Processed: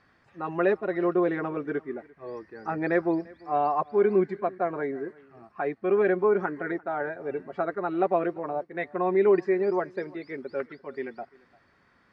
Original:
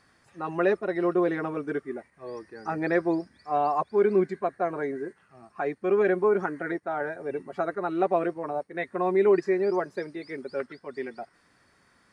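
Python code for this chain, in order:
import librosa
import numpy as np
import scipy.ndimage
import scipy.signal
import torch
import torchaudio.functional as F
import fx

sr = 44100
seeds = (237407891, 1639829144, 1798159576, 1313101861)

y = scipy.signal.sosfilt(scipy.signal.butter(2, 3400.0, 'lowpass', fs=sr, output='sos'), x)
y = y + 10.0 ** (-24.0 / 20.0) * np.pad(y, (int(344 * sr / 1000.0), 0))[:len(y)]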